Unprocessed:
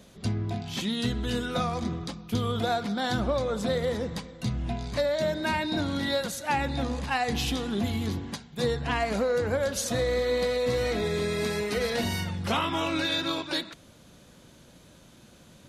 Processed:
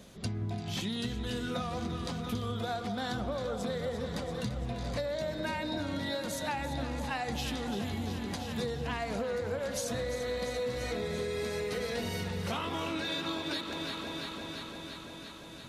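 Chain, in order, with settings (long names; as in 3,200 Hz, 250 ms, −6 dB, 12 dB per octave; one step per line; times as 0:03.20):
delay that swaps between a low-pass and a high-pass 171 ms, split 910 Hz, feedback 86%, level −9 dB
downward compressor 5 to 1, threshold −32 dBFS, peak gain reduction 10 dB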